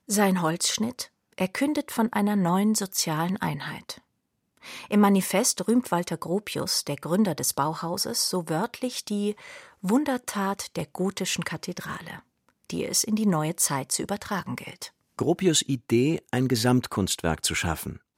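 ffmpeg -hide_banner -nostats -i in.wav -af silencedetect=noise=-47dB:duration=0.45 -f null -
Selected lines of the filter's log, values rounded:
silence_start: 3.98
silence_end: 4.57 | silence_duration: 0.59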